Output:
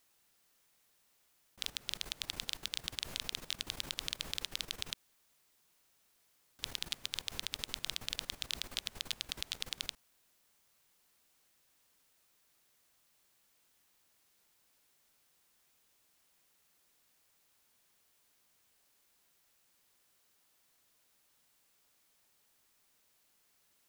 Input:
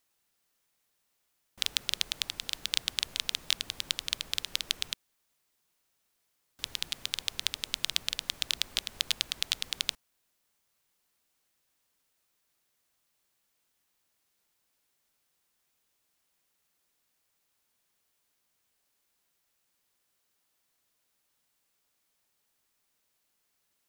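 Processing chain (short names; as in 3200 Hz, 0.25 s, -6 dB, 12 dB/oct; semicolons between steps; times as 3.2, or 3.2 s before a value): level quantiser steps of 13 dB; limiter -19.5 dBFS, peak gain reduction 4.5 dB; gain +5.5 dB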